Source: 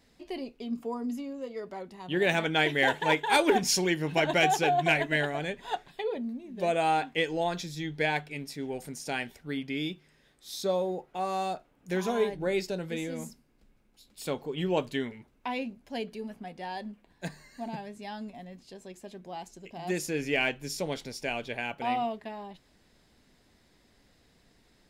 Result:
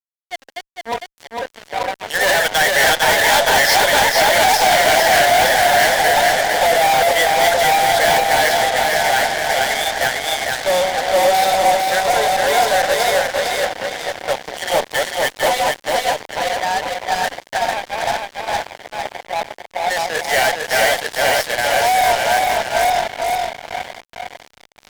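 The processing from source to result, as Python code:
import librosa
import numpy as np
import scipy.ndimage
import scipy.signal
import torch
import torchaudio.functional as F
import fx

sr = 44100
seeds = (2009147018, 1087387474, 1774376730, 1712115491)

p1 = fx.reverse_delay_fb(x, sr, ms=458, feedback_pct=47, wet_db=0.0)
p2 = fx.env_lowpass(p1, sr, base_hz=1000.0, full_db=-23.0)
p3 = scipy.signal.sosfilt(scipy.signal.butter(4, 560.0, 'highpass', fs=sr, output='sos'), p2)
p4 = fx.air_absorb(p3, sr, metres=140.0)
p5 = fx.fixed_phaser(p4, sr, hz=1700.0, stages=8)
p6 = fx.echo_swing(p5, sr, ms=1474, ratio=3, feedback_pct=72, wet_db=-19)
p7 = fx.fuzz(p6, sr, gain_db=39.0, gate_db=-43.0)
p8 = fx.high_shelf(p7, sr, hz=7700.0, db=6.5)
y = p8 + fx.echo_single(p8, sr, ms=453, db=-3.5, dry=0)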